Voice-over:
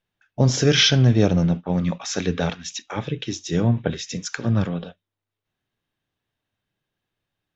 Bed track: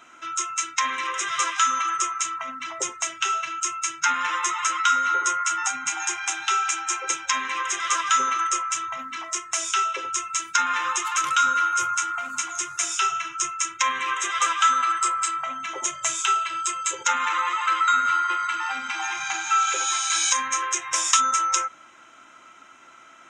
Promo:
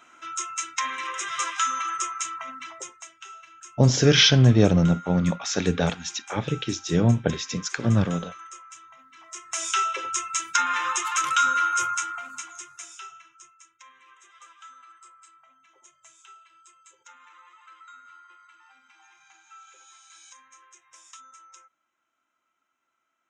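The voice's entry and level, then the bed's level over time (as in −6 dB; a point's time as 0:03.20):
3.40 s, 0.0 dB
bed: 0:02.58 −4 dB
0:03.16 −19 dB
0:09.12 −19 dB
0:09.65 −1 dB
0:11.85 −1 dB
0:13.69 −28.5 dB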